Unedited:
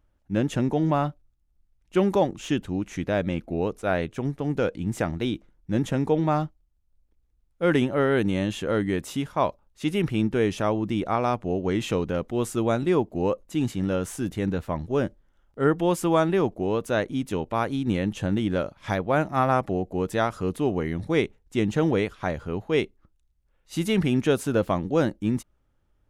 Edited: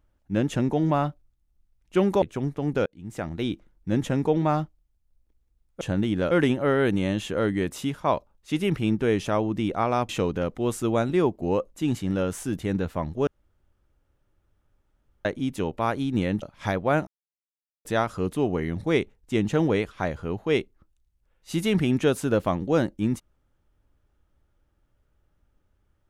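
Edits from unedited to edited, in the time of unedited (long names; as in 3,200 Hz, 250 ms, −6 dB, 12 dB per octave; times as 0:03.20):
0:02.22–0:04.04: remove
0:04.68–0:05.34: fade in
0:11.41–0:11.82: remove
0:15.00–0:16.98: fill with room tone
0:18.15–0:18.65: move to 0:07.63
0:19.30–0:20.08: silence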